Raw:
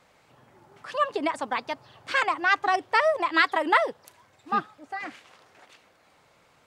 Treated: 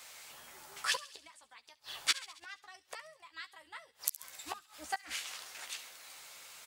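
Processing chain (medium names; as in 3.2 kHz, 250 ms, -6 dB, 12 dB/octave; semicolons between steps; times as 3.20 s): octave divider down 2 oct, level -3 dB; bass shelf 150 Hz -3.5 dB; inverted gate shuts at -25 dBFS, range -33 dB; in parallel at -11 dB: hard clipper -30.5 dBFS, distortion -15 dB; on the sum: pre-emphasis filter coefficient 0.97; doubling 13 ms -7 dB; on a send: feedback echo behind a high-pass 68 ms, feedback 62%, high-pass 2.8 kHz, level -15.5 dB; on the sum: trim +16 dB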